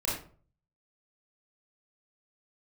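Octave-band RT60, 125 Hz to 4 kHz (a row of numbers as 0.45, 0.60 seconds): 0.75, 0.50, 0.50, 0.40, 0.30, 0.25 seconds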